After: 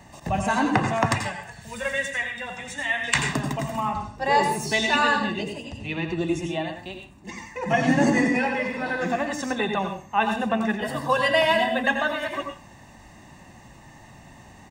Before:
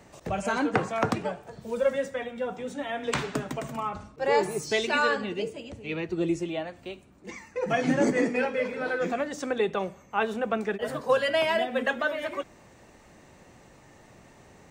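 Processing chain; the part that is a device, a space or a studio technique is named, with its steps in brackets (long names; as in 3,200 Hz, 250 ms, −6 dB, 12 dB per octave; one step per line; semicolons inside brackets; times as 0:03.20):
0:01.06–0:03.18: octave-band graphic EQ 250/500/1,000/2,000/8,000 Hz −11/−4/−5/+9/+7 dB
microphone above a desk (comb filter 1.1 ms, depth 62%; convolution reverb RT60 0.30 s, pre-delay 82 ms, DRR 5.5 dB)
level +3 dB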